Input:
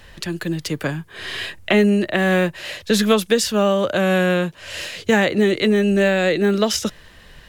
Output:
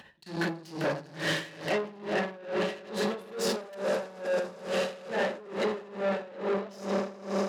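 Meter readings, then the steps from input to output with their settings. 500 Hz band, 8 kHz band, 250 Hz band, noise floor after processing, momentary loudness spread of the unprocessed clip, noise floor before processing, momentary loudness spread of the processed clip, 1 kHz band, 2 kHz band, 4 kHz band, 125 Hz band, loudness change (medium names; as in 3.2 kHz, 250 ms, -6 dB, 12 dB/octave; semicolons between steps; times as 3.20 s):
-11.0 dB, -15.0 dB, -16.0 dB, -48 dBFS, 12 LU, -46 dBFS, 2 LU, -9.0 dB, -12.5 dB, -13.0 dB, -15.5 dB, -13.0 dB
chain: resonances exaggerated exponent 1.5; in parallel at -1.5 dB: compression 6:1, threshold -29 dBFS, peak gain reduction 17 dB; on the sum: dynamic bell 680 Hz, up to +5 dB, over -30 dBFS, Q 0.78; on a send: echo with a slow build-up 81 ms, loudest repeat 8, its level -15.5 dB; on the sum: simulated room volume 120 m³, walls mixed, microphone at 1.1 m; level held to a coarse grid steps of 20 dB; saturation -24 dBFS, distortion -6 dB; high-pass 170 Hz 12 dB/octave; peaking EQ 910 Hz +4.5 dB 0.63 oct; logarithmic tremolo 2.3 Hz, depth 21 dB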